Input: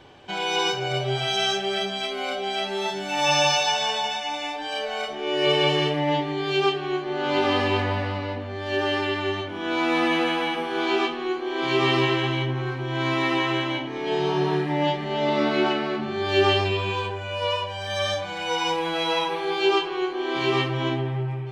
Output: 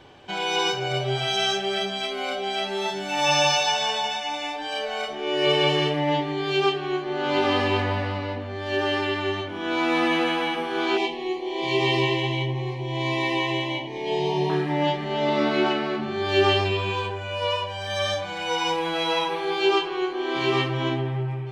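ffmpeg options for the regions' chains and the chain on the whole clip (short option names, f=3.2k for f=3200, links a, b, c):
-filter_complex "[0:a]asettb=1/sr,asplit=3[a][b][c];[a]atrim=end=10.974[d];[b]atrim=start=10.97:end=14.5,asetpts=PTS-STARTPTS,afade=t=in:d=0.004:c=qsin,afade=t=out:st=3.526:d=0.004:c=qsin,asuperstop=centerf=1400:order=8:qfactor=1.8,equalizer=f=270:w=5.8:g=-10.5[e];[c]atrim=start=14.496[f];[d][e]acrossfade=d=0.004:c1=hsin:c2=qsin[g];[g][f]acrossfade=d=0.004:c1=qsin:c2=hsin"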